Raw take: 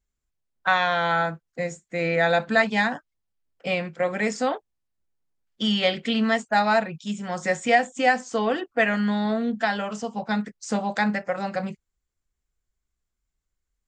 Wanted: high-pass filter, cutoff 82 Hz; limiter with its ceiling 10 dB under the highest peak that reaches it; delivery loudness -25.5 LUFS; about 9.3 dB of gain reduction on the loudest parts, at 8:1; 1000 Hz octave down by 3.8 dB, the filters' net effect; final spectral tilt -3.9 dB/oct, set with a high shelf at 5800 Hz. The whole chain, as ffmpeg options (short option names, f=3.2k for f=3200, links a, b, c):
-af "highpass=82,equalizer=f=1k:t=o:g=-6,highshelf=f=5.8k:g=8,acompressor=threshold=-25dB:ratio=8,volume=8dB,alimiter=limit=-15.5dB:level=0:latency=1"